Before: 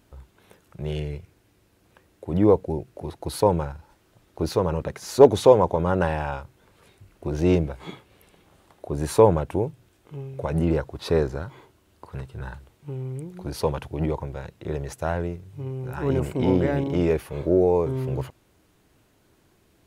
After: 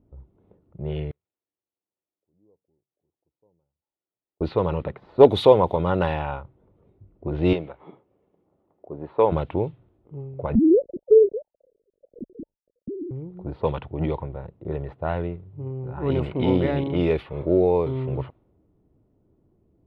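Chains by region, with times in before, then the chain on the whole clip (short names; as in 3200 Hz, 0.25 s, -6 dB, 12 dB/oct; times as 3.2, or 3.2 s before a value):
1.11–4.41 switching spikes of -19 dBFS + low shelf 140 Hz -11.5 dB + flipped gate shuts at -23 dBFS, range -41 dB
7.53–9.32 HPF 520 Hz 6 dB/oct + air absorption 170 m
10.55–13.11 sine-wave speech + steep low-pass 590 Hz 72 dB/oct + tilt -4.5 dB/oct
whole clip: notch 1600 Hz, Q 8.6; low-pass opened by the level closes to 430 Hz, open at -16 dBFS; resonant high shelf 4800 Hz -9.5 dB, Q 3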